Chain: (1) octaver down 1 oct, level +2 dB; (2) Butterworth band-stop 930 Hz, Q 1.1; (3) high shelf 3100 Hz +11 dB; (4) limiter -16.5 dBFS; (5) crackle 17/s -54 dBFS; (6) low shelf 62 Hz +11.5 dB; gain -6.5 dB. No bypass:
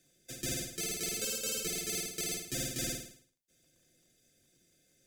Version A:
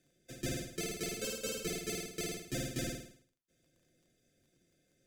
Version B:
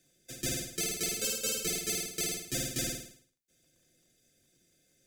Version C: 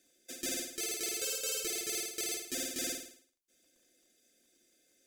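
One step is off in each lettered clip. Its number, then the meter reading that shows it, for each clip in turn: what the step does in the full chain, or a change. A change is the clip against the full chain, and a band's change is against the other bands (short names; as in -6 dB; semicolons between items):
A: 3, 8 kHz band -8.5 dB; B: 4, crest factor change +3.5 dB; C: 1, 125 Hz band -19.0 dB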